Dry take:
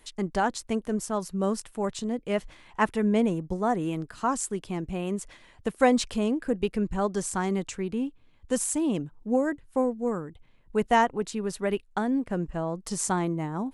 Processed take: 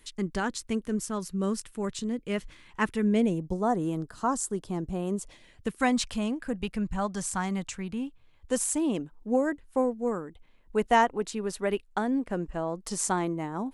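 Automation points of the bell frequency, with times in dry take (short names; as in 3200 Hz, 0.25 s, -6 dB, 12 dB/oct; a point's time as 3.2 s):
bell -10.5 dB 0.88 oct
3.03 s 720 Hz
3.7 s 2400 Hz
5.09 s 2400 Hz
5.99 s 390 Hz
8.07 s 390 Hz
8.61 s 120 Hz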